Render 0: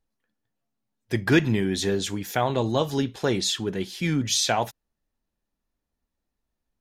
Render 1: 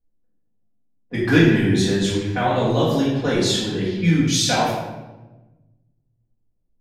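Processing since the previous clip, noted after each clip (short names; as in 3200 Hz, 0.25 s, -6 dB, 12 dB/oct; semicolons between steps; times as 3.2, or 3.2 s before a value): low-pass opened by the level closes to 510 Hz, open at -21.5 dBFS; reverb RT60 1.1 s, pre-delay 4 ms, DRR -9 dB; gain -4.5 dB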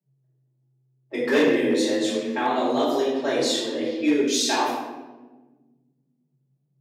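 hard clip -10 dBFS, distortion -18 dB; frequency shift +130 Hz; gain -3.5 dB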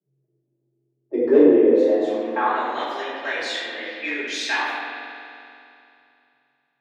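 band-pass sweep 370 Hz -> 1900 Hz, 1.57–2.8; spring tank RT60 2.7 s, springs 44 ms, chirp 30 ms, DRR 3.5 dB; gain +8.5 dB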